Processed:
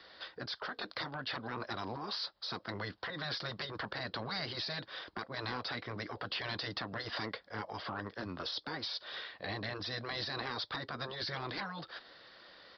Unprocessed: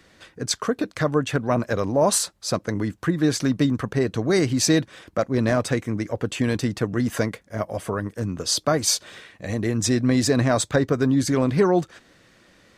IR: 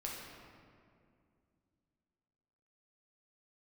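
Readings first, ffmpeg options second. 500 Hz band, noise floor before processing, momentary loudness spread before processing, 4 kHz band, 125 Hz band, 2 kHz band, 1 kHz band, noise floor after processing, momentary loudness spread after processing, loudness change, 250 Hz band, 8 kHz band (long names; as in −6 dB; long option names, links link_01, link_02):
−21.5 dB, −57 dBFS, 8 LU, −8.0 dB, −21.0 dB, −9.0 dB, −11.5 dB, −63 dBFS, 5 LU, −16.5 dB, −24.0 dB, −36.0 dB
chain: -filter_complex "[0:a]aexciter=amount=15:drive=3.9:freq=3700,acrossover=split=480 2500:gain=0.141 1 0.0631[link_01][link_02][link_03];[link_01][link_02][link_03]amix=inputs=3:normalize=0,acompressor=threshold=-28dB:ratio=4,afftfilt=real='re*lt(hypot(re,im),0.0708)':imag='im*lt(hypot(re,im),0.0708)':win_size=1024:overlap=0.75,aresample=11025,asoftclip=type=tanh:threshold=-31.5dB,aresample=44100,volume=2dB"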